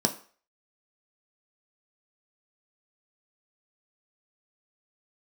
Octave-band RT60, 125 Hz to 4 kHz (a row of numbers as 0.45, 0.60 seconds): 0.30, 0.35, 0.40, 0.45, 0.45, 0.40 seconds